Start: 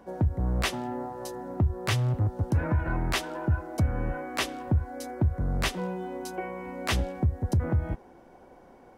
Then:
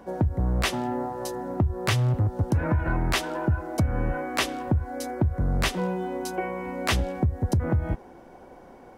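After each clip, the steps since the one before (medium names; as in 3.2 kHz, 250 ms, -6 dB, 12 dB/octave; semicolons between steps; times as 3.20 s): compression, threshold -24 dBFS, peak gain reduction 5.5 dB; trim +5 dB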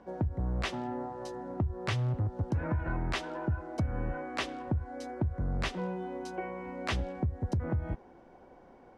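distance through air 83 m; trim -7.5 dB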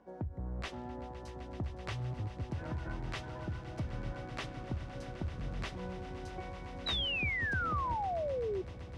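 echo with a slow build-up 128 ms, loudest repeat 8, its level -16 dB; painted sound fall, 6.86–8.62 s, 360–4000 Hz -27 dBFS; trim -8 dB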